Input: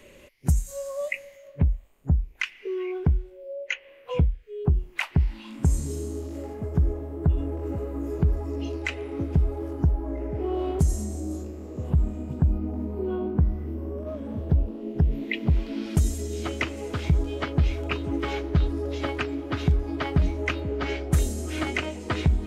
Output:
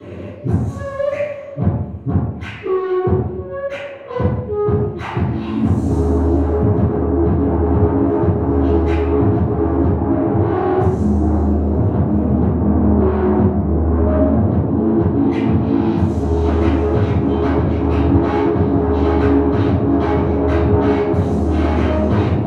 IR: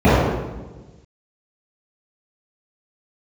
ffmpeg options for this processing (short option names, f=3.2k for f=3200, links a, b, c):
-filter_complex "[0:a]aeval=exprs='(tanh(70.8*val(0)+0.35)-tanh(0.35))/70.8':c=same,asettb=1/sr,asplit=3[a][b][c];[a]atrim=end=5.074[d];[b]atrim=start=5.07:end=7.21,asetpts=PTS-STARTPTS,afade=t=in:d=0.004:c=qsin,afade=t=out:st=2.136:d=0.004:c=qsin,highshelf=f=8.3k:g=11[e];[c]atrim=start=7.206[f];[d][e]acrossfade=d=0.004:c1=hsin:c2=qsin[g];[g][f]acrossfade=d=0.004:c1=qsin:c2=hsin[h];[1:a]atrim=start_sample=2205,asetrate=70560,aresample=44100[i];[h][i]afir=irnorm=-1:irlink=0,volume=-9dB"